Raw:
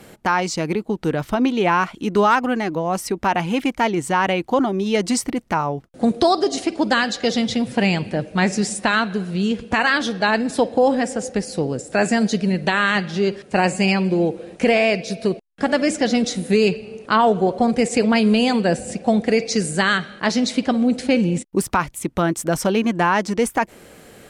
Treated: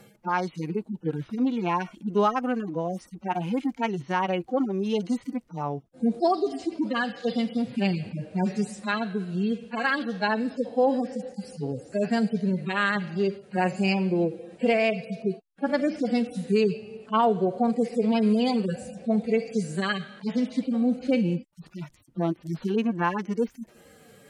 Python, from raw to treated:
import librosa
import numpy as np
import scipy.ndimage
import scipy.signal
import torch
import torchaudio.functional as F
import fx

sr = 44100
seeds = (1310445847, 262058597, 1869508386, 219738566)

y = fx.hpss_only(x, sr, part='harmonic')
y = y * 10.0 ** (-5.5 / 20.0)